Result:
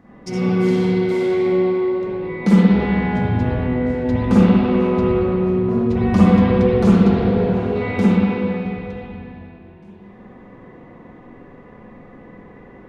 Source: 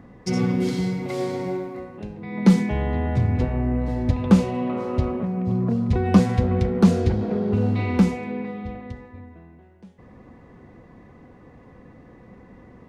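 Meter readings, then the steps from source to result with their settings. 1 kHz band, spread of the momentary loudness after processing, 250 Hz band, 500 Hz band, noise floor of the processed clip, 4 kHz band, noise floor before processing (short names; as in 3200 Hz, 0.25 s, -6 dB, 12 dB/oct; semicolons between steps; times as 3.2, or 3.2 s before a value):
+5.5 dB, 10 LU, +5.5 dB, +8.5 dB, -43 dBFS, n/a, -49 dBFS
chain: bell 72 Hz -7.5 dB 1.9 oct; spring tank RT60 2.6 s, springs 46/55/60 ms, chirp 70 ms, DRR -10 dB; gain -3 dB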